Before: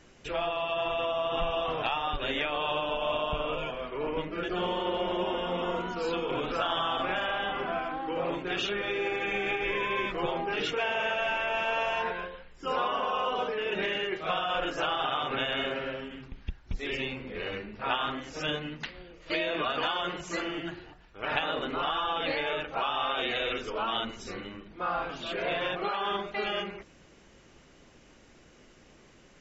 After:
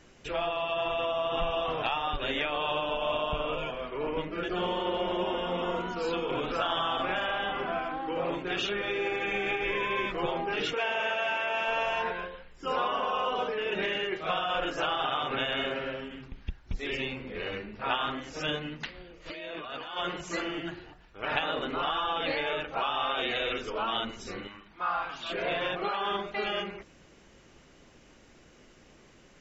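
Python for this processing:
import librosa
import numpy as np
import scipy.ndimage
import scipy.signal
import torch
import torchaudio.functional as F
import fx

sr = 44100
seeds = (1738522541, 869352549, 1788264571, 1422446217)

y = fx.highpass(x, sr, hz=250.0, slope=6, at=(10.74, 11.68))
y = fx.over_compress(y, sr, threshold_db=-38.0, ratio=-1.0, at=(19.24, 19.96), fade=0.02)
y = fx.low_shelf_res(y, sr, hz=680.0, db=-8.0, q=1.5, at=(24.47, 25.3))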